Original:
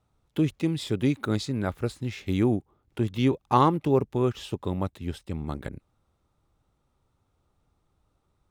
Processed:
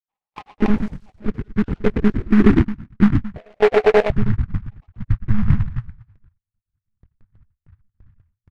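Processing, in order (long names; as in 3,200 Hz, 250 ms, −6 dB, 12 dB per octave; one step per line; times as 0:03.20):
time-frequency cells dropped at random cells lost 60%
low-shelf EQ 410 Hz +11.5 dB
echo with shifted repeats 111 ms, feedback 33%, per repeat −57 Hz, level −9 dB
low-pass filter sweep 940 Hz → 110 Hz, 0:00.71–0:04.38
0:00.95–0:01.68: parametric band 650 Hz −13.5 dB 2.2 octaves
0:03.37–0:04.10: ring modulation 580 Hz
in parallel at +0.5 dB: compressor whose output falls as the input rises −19 dBFS, ratio −1
on the sum: one-pitch LPC vocoder at 8 kHz 210 Hz
noise gate with hold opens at −43 dBFS
short delay modulated by noise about 1,300 Hz, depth 0.092 ms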